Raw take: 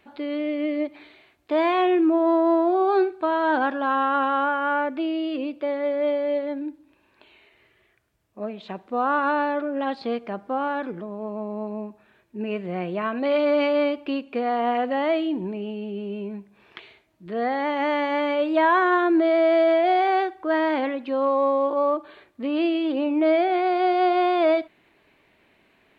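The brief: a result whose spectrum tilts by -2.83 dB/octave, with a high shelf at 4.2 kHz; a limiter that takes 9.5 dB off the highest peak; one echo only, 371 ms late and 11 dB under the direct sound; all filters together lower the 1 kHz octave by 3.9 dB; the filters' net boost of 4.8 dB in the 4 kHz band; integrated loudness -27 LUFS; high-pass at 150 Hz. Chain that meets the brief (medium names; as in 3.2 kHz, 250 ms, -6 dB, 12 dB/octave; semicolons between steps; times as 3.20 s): high-pass 150 Hz; peaking EQ 1 kHz -6 dB; peaking EQ 4 kHz +4.5 dB; treble shelf 4.2 kHz +5 dB; peak limiter -20 dBFS; delay 371 ms -11 dB; trim +1.5 dB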